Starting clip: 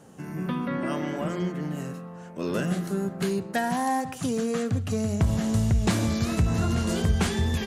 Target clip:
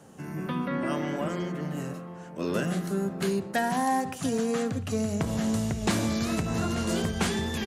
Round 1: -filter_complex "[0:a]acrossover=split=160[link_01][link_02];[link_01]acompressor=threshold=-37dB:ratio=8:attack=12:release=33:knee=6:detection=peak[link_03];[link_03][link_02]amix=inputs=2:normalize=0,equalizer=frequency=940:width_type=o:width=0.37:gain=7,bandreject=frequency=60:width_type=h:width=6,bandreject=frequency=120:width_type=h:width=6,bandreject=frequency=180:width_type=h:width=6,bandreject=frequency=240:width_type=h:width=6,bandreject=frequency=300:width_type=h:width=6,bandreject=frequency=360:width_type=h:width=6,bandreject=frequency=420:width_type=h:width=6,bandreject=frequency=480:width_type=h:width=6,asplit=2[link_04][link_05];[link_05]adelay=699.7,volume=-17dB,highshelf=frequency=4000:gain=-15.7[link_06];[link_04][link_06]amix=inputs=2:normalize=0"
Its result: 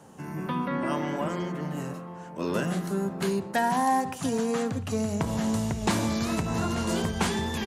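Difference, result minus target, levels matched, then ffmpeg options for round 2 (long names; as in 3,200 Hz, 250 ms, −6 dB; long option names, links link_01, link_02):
1,000 Hz band +2.5 dB
-filter_complex "[0:a]acrossover=split=160[link_01][link_02];[link_01]acompressor=threshold=-37dB:ratio=8:attack=12:release=33:knee=6:detection=peak[link_03];[link_03][link_02]amix=inputs=2:normalize=0,bandreject=frequency=60:width_type=h:width=6,bandreject=frequency=120:width_type=h:width=6,bandreject=frequency=180:width_type=h:width=6,bandreject=frequency=240:width_type=h:width=6,bandreject=frequency=300:width_type=h:width=6,bandreject=frequency=360:width_type=h:width=6,bandreject=frequency=420:width_type=h:width=6,bandreject=frequency=480:width_type=h:width=6,asplit=2[link_04][link_05];[link_05]adelay=699.7,volume=-17dB,highshelf=frequency=4000:gain=-15.7[link_06];[link_04][link_06]amix=inputs=2:normalize=0"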